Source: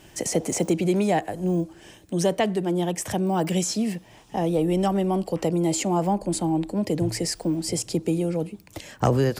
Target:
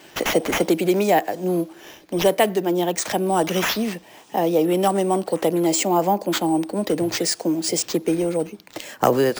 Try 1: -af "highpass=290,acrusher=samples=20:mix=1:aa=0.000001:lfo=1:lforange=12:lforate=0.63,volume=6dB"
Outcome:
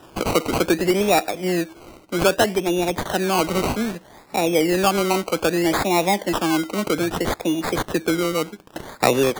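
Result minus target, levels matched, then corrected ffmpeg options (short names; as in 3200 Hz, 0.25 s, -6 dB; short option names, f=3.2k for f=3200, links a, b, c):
decimation with a swept rate: distortion +9 dB
-af "highpass=290,acrusher=samples=4:mix=1:aa=0.000001:lfo=1:lforange=2.4:lforate=0.63,volume=6dB"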